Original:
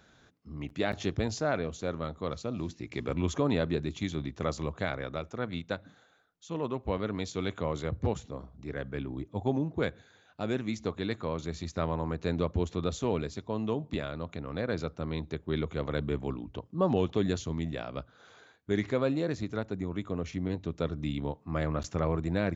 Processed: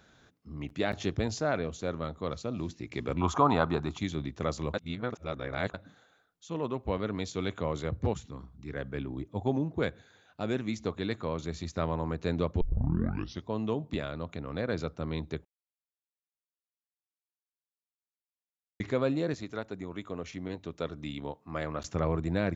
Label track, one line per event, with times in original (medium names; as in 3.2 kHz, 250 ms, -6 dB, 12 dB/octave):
3.210000	3.980000	high-order bell 1 kHz +14 dB 1.2 oct
4.740000	5.740000	reverse
8.130000	8.730000	peaking EQ 580 Hz -13.5 dB
12.610000	12.610000	tape start 0.86 s
15.450000	18.800000	mute
19.340000	21.850000	bass shelf 260 Hz -10 dB